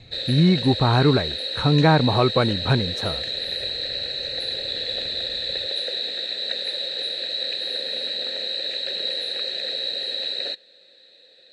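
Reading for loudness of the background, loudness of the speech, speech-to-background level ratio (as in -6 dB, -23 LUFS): -25.5 LUFS, -20.5 LUFS, 5.0 dB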